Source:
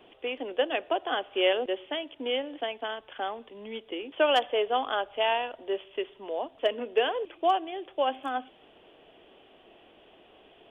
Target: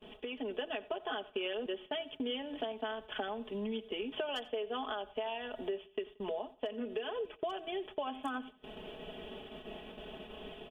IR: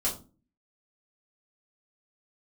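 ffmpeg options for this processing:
-filter_complex "[0:a]bandreject=frequency=2100:width=20,aecho=1:1:4.7:0.89,alimiter=limit=-18.5dB:level=0:latency=1:release=282,bass=frequency=250:gain=11,treble=frequency=4000:gain=5,acompressor=threshold=-41dB:ratio=6,agate=range=-20dB:threshold=-52dB:ratio=16:detection=peak,dynaudnorm=framelen=230:gausssize=3:maxgain=6dB,asplit=2[link_01][link_02];[link_02]aecho=0:1:89|178|267:0.0944|0.0321|0.0109[link_03];[link_01][link_03]amix=inputs=2:normalize=0,volume=-1dB"

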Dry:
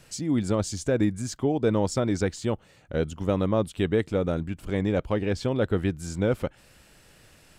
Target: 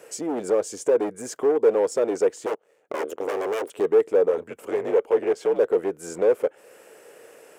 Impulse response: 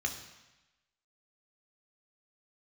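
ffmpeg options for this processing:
-filter_complex "[0:a]asettb=1/sr,asplit=3[link_01][link_02][link_03];[link_01]atrim=end=2.464[link_04];[link_02]atrim=start=2.46:end=3.7,asetpts=PTS-STARTPTS,afade=type=in:duration=0.004:curve=qsin,afade=type=out:start_time=1.236:duration=0.004:curve=qsin,aeval=exprs='0.282*(cos(1*acos(clip(val(0)/0.282,-1,1)))-cos(1*PI/2))+0.01*(cos(3*acos(clip(val(0)/0.282,-1,1)))-cos(3*PI/2))+0.0282*(cos(5*acos(clip(val(0)/0.282,-1,1)))-cos(5*PI/2))+0.0631*(cos(7*acos(clip(val(0)/0.282,-1,1)))-cos(7*PI/2))+0.1*(cos(8*acos(clip(val(0)/0.282,-1,1)))-cos(8*PI/2))':channel_layout=same[link_05];[link_03]atrim=start=3.696[link_06];[link_04][link_05]acrossfade=duration=0.004:curve1=hsin:curve2=qsin[link_07];[link_07][link_06]acrossfade=duration=0.004:curve1=qsin:curve2=hsin,asplit=3[link_08][link_09][link_10];[link_08]afade=type=out:start_time=4.28:duration=0.02[link_11];[link_09]afreqshift=-71,afade=type=in:start_time=4.28:duration=0.02,afade=type=out:start_time=5.58:duration=0.02[link_12];[link_10]afade=type=in:start_time=5.58:duration=0.02[link_13];[link_11][link_12][link_13]amix=inputs=3:normalize=0,asoftclip=type=hard:threshold=-25dB,highpass=frequency=450:width_type=q:width=4.9,equalizer=frequency=4100:width=1.5:gain=-12,asplit=2[link_14][link_15];[link_15]acompressor=threshold=-35dB:ratio=6,volume=-1dB[link_16];[link_14][link_16]amix=inputs=2:normalize=0"

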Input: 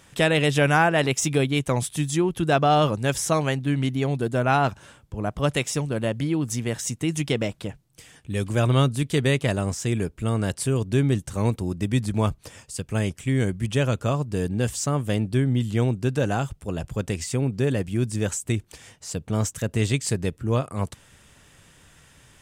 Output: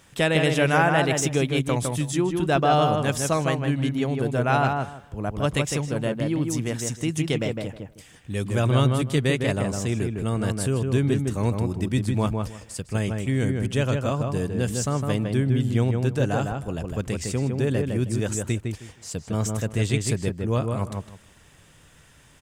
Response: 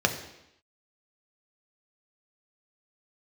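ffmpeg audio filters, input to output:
-filter_complex "[0:a]acrusher=bits=11:mix=0:aa=0.000001,asplit=2[link_01][link_02];[link_02]adelay=157,lowpass=frequency=1900:poles=1,volume=-3.5dB,asplit=2[link_03][link_04];[link_04]adelay=157,lowpass=frequency=1900:poles=1,volume=0.21,asplit=2[link_05][link_06];[link_06]adelay=157,lowpass=frequency=1900:poles=1,volume=0.21[link_07];[link_03][link_05][link_07]amix=inputs=3:normalize=0[link_08];[link_01][link_08]amix=inputs=2:normalize=0,volume=-1.5dB"

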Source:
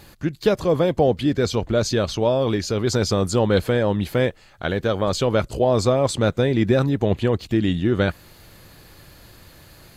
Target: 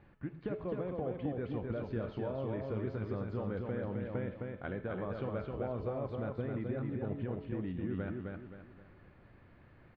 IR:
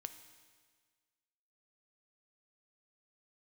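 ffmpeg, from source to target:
-filter_complex "[0:a]lowpass=frequency=2300:width=0.5412,lowpass=frequency=2300:width=1.3066,equalizer=frequency=180:width=0.94:gain=3.5,acompressor=threshold=-20dB:ratio=6,aecho=1:1:262|524|786|1048|1310:0.668|0.247|0.0915|0.0339|0.0125[link_01];[1:a]atrim=start_sample=2205,afade=type=out:start_time=0.26:duration=0.01,atrim=end_sample=11907,asetrate=61740,aresample=44100[link_02];[link_01][link_02]afir=irnorm=-1:irlink=0,volume=-7.5dB"

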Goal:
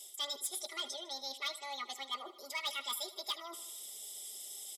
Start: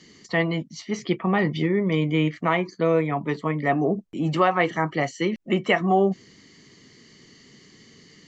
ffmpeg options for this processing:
ffmpeg -i in.wav -af "asuperstop=centerf=940:order=8:qfactor=4.2,asetrate=76440,aresample=44100,areverse,acompressor=threshold=-31dB:ratio=8,areverse,aderivative,aecho=1:1:5:0.96,aecho=1:1:77|154|231|308|385|462:0.158|0.0935|0.0552|0.0326|0.0192|0.0113,asoftclip=type=hard:threshold=-35.5dB,highpass=190,volume=5.5dB" out.wav

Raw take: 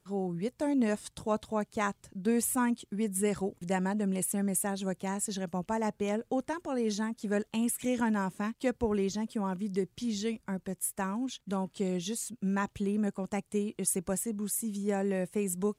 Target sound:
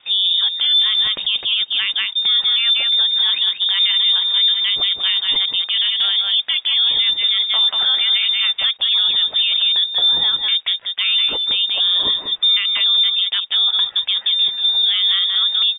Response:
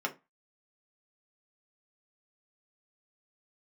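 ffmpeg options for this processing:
-filter_complex "[0:a]highpass=110,asplit=2[link_01][link_02];[link_02]acompressor=threshold=-42dB:ratio=6,volume=-1dB[link_03];[link_01][link_03]amix=inputs=2:normalize=0,acrusher=bits=10:mix=0:aa=0.000001,aecho=1:1:186:0.422,lowpass=frequency=3200:width_type=q:width=0.5098,lowpass=frequency=3200:width_type=q:width=0.6013,lowpass=frequency=3200:width_type=q:width=0.9,lowpass=frequency=3200:width_type=q:width=2.563,afreqshift=-3800,alimiter=level_in=25dB:limit=-1dB:release=50:level=0:latency=1,volume=-8dB"

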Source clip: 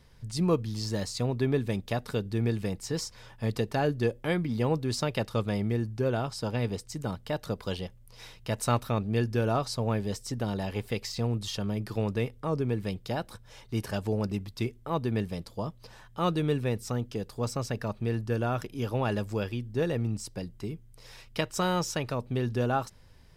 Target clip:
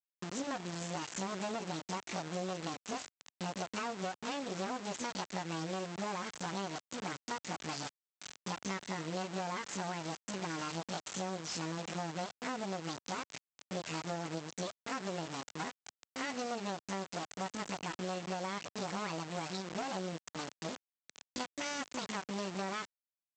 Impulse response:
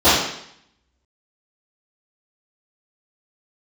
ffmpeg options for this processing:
-filter_complex "[0:a]acrossover=split=300[link_01][link_02];[link_02]asoftclip=type=tanh:threshold=-29.5dB[link_03];[link_01][link_03]amix=inputs=2:normalize=0,acrossover=split=220[link_04][link_05];[link_05]adelay=30[link_06];[link_04][link_06]amix=inputs=2:normalize=0,asetrate=70004,aresample=44100,atempo=0.629961,aresample=16000,acrusher=bits=4:dc=4:mix=0:aa=0.000001,aresample=44100,highpass=130,lowshelf=frequency=490:gain=-3.5,acompressor=threshold=-39dB:ratio=6,volume=4.5dB"

